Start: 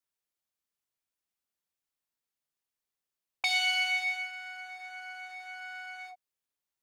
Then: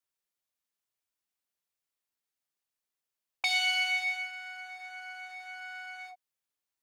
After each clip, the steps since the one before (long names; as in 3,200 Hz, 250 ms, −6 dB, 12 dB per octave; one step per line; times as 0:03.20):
low-shelf EQ 370 Hz −3.5 dB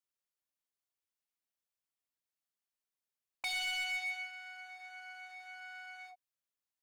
gain into a clipping stage and back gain 27 dB
level −6 dB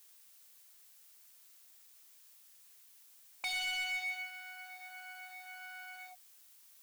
background noise blue −61 dBFS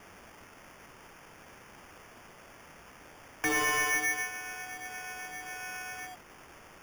decimation without filtering 11×
level +8 dB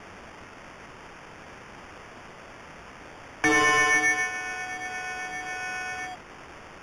high-frequency loss of the air 79 metres
level +8.5 dB